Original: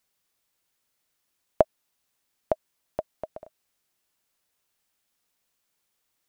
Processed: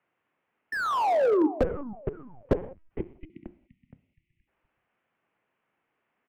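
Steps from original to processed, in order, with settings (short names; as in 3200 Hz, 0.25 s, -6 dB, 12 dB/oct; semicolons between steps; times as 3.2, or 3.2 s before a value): Wiener smoothing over 9 samples; 2.97–4.48 spectral delete 450–2000 Hz; treble ducked by the level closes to 540 Hz, closed at -29.5 dBFS; 0.72–1.47 painted sound fall 360–1900 Hz -30 dBFS; mistuned SSB -76 Hz 210–2900 Hz; frequency-shifting echo 0.47 s, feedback 34%, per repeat -100 Hz, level -16 dB; non-linear reverb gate 0.22 s falling, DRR 11.5 dB; 1.61–3.3 LPC vocoder at 8 kHz pitch kept; slew limiter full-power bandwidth 22 Hz; gain +8.5 dB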